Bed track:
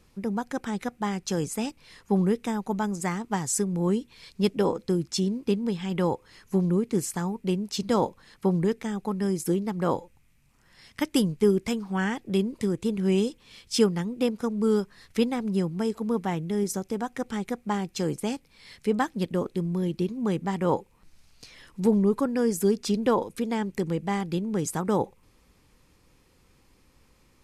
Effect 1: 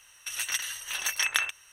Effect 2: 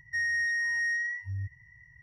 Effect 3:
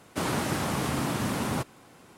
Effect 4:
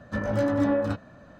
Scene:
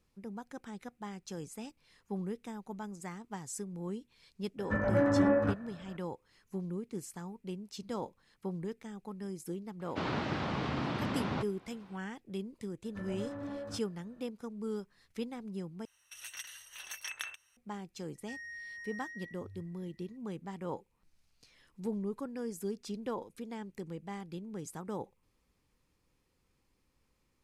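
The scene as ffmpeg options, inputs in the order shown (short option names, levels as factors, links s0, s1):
-filter_complex "[4:a]asplit=2[s0][s1];[0:a]volume=0.188[s2];[s0]highshelf=f=2900:t=q:w=1.5:g=-10[s3];[3:a]lowpass=f=4400:w=0.5412,lowpass=f=4400:w=1.3066[s4];[s1]asoftclip=type=tanh:threshold=0.112[s5];[s2]asplit=2[s6][s7];[s6]atrim=end=15.854[s8];[1:a]atrim=end=1.72,asetpts=PTS-STARTPTS,volume=0.188[s9];[s7]atrim=start=17.566[s10];[s3]atrim=end=1.39,asetpts=PTS-STARTPTS,volume=0.708,afade=t=in:d=0.004:c=hsin,afade=t=out:st=1.386:d=0.004:c=hsin,adelay=4580[s11];[s4]atrim=end=2.17,asetpts=PTS-STARTPTS,volume=0.531,afade=t=in:d=0.004:c=hsin,afade=t=out:st=2.166:d=0.004:c=hsin,adelay=9800[s12];[s5]atrim=end=1.39,asetpts=PTS-STARTPTS,volume=0.168,afade=t=in:d=0.004:c=hsin,afade=t=out:st=1.386:d=0.004:c=hsin,adelay=12830[s13];[2:a]atrim=end=2.02,asetpts=PTS-STARTPTS,volume=0.141,afade=t=in:d=0.004:c=hsin,afade=t=out:st=2.016:d=0.004:c=hsin,adelay=18150[s14];[s8][s9]acrossfade=d=0.004:c1=hsin:c2=hsin[s15];[s15][s10]acrossfade=d=0.004:c1=hsin:c2=hsin[s16];[s16][s11][s12][s13][s14]amix=inputs=5:normalize=0"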